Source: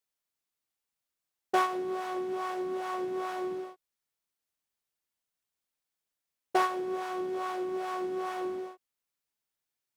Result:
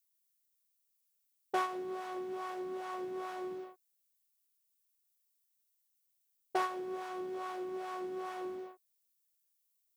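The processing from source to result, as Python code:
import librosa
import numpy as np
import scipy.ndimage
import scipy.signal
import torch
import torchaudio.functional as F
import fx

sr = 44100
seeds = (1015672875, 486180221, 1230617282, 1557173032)

y = fx.env_lowpass(x, sr, base_hz=360.0, full_db=-31.0)
y = fx.dmg_noise_colour(y, sr, seeds[0], colour='violet', level_db=-72.0)
y = y * librosa.db_to_amplitude(-6.5)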